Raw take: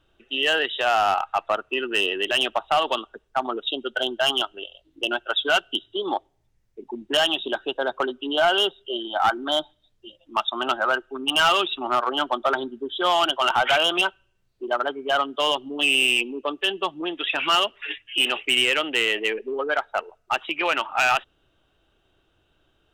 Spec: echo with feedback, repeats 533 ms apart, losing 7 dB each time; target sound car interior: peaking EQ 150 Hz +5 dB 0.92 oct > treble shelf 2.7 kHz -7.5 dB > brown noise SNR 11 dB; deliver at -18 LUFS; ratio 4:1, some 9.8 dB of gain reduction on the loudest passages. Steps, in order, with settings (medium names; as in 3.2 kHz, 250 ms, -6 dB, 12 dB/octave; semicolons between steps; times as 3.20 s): compression 4:1, threshold -28 dBFS; peaking EQ 150 Hz +5 dB 0.92 oct; treble shelf 2.7 kHz -7.5 dB; feedback delay 533 ms, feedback 45%, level -7 dB; brown noise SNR 11 dB; trim +14 dB